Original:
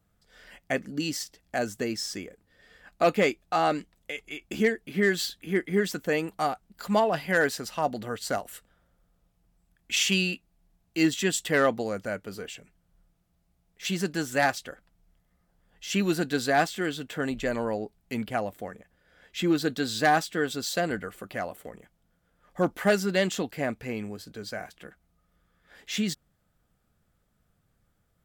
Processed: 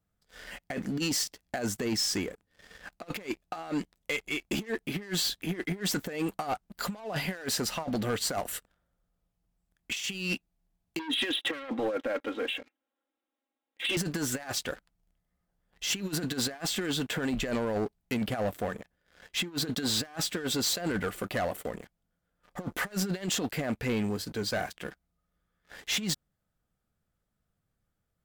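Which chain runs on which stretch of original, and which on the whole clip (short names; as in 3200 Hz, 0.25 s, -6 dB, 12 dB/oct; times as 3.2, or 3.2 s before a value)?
10.99–13.97 brick-wall FIR band-pass 230–4000 Hz + comb 3.7 ms, depth 84% + core saturation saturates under 1600 Hz
whole clip: negative-ratio compressor -31 dBFS, ratio -0.5; sample leveller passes 3; gain -8.5 dB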